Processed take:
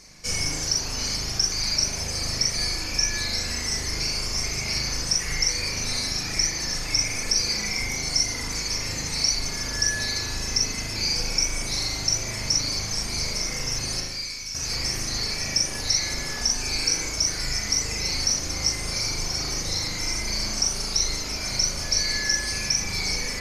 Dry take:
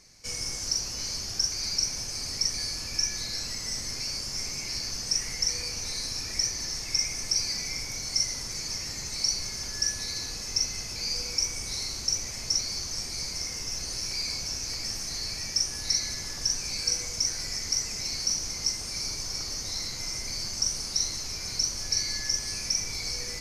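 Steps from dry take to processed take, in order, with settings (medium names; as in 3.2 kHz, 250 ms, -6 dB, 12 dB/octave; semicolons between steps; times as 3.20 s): reverb removal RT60 1.1 s; 14.00–14.55 s: amplifier tone stack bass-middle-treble 5-5-5; in parallel at +2 dB: peak limiter -22.5 dBFS, peak gain reduction 9.5 dB; on the sum: spring tank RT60 1.3 s, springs 38 ms, chirp 35 ms, DRR -4 dB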